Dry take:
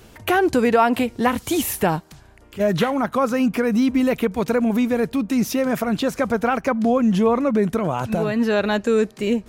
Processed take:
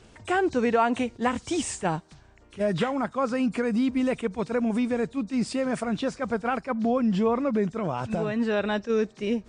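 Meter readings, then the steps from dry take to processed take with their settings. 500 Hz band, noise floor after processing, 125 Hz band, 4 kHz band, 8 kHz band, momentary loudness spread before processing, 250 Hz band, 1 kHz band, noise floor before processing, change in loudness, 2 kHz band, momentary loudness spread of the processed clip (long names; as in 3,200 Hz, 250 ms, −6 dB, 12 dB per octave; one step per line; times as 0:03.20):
−6.5 dB, −54 dBFS, −6.0 dB, −7.0 dB, −6.0 dB, 5 LU, −6.5 dB, −6.0 dB, −48 dBFS, −6.5 dB, −6.5 dB, 5 LU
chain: hearing-aid frequency compression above 3,500 Hz 1.5 to 1
level that may rise only so fast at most 420 dB per second
level −6 dB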